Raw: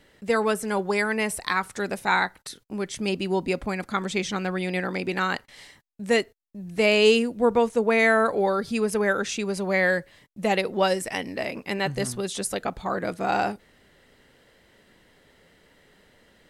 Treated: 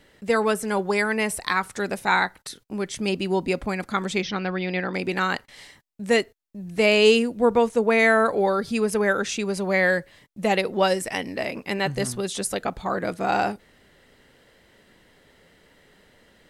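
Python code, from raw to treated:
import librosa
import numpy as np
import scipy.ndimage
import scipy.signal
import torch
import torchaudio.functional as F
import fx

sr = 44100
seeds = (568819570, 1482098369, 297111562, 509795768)

y = fx.ellip_lowpass(x, sr, hz=5500.0, order=4, stop_db=40, at=(4.21, 4.93), fade=0.02)
y = y * 10.0 ** (1.5 / 20.0)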